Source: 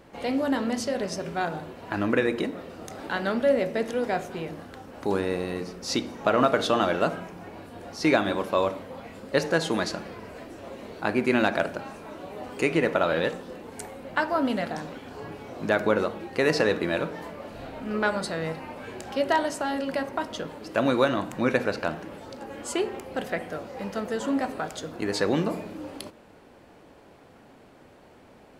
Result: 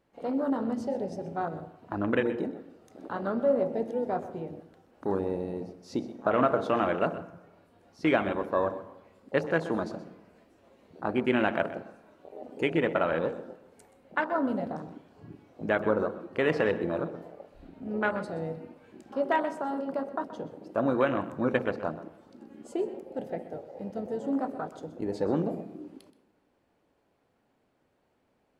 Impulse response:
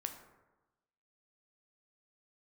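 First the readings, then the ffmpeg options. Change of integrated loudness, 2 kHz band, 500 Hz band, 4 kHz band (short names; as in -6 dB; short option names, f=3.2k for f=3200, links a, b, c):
-3.5 dB, -5.5 dB, -3.0 dB, -12.0 dB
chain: -filter_complex "[0:a]afwtdn=0.0398,asplit=2[a][b];[1:a]atrim=start_sample=2205,adelay=126[c];[b][c]afir=irnorm=-1:irlink=0,volume=-12.5dB[d];[a][d]amix=inputs=2:normalize=0,volume=-3dB"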